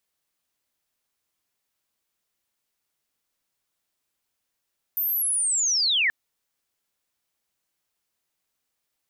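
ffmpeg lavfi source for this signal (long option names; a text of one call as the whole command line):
ffmpeg -f lavfi -i "aevalsrc='pow(10,(-22.5+4*t/1.13)/20)*sin(2*PI*(14000*t-12300*t*t/(2*1.13)))':duration=1.13:sample_rate=44100" out.wav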